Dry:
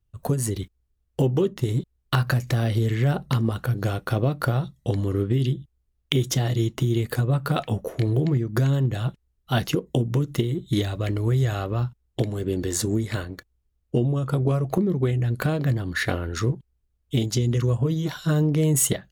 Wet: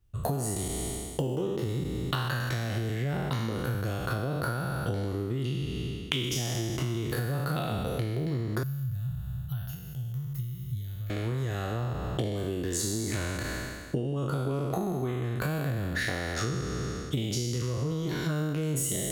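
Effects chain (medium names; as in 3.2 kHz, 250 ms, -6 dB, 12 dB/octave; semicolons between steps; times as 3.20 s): spectral sustain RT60 1.67 s; compression 12:1, threshold -30 dBFS, peak gain reduction 17.5 dB; 8.63–11.10 s: FFT filter 130 Hz 0 dB, 300 Hz -30 dB, 650 Hz -24 dB, 1.5 kHz -17 dB, 2.4 kHz -20 dB, 9.5 kHz -11 dB, 15 kHz +9 dB; trim +3 dB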